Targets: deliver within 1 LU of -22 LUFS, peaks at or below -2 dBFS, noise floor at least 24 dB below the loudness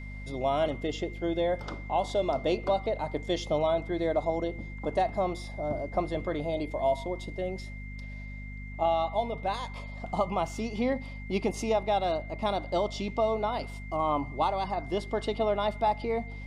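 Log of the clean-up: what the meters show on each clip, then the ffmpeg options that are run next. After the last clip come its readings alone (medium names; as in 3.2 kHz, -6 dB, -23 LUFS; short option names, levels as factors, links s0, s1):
hum 50 Hz; highest harmonic 250 Hz; hum level -38 dBFS; steady tone 2.1 kHz; tone level -46 dBFS; loudness -30.5 LUFS; peak level -15.5 dBFS; loudness target -22.0 LUFS
-> -af "bandreject=f=50:t=h:w=6,bandreject=f=100:t=h:w=6,bandreject=f=150:t=h:w=6,bandreject=f=200:t=h:w=6,bandreject=f=250:t=h:w=6"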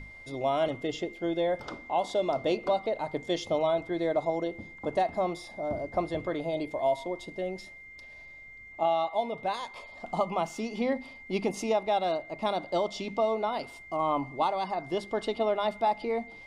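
hum not found; steady tone 2.1 kHz; tone level -46 dBFS
-> -af "bandreject=f=2100:w=30"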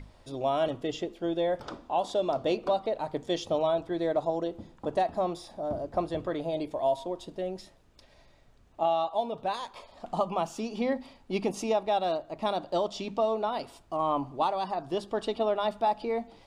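steady tone not found; loudness -30.5 LUFS; peak level -15.5 dBFS; loudness target -22.0 LUFS
-> -af "volume=2.66"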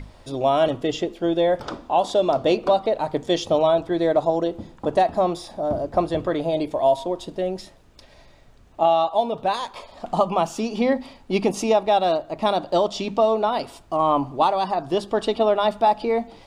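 loudness -22.0 LUFS; peak level -7.0 dBFS; noise floor -51 dBFS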